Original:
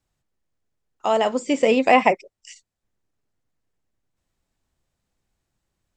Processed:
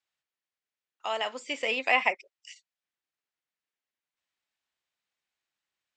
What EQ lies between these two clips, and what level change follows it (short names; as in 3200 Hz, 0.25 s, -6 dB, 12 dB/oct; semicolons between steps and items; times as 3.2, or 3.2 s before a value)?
band-pass 2700 Hz, Q 0.93; -1.5 dB